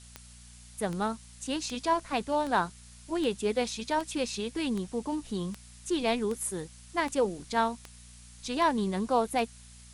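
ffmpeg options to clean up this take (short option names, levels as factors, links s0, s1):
-af "adeclick=t=4,bandreject=f=59.6:t=h:w=4,bandreject=f=119.2:t=h:w=4,bandreject=f=178.8:t=h:w=4,bandreject=f=238.4:t=h:w=4,afftdn=nr=24:nf=-51"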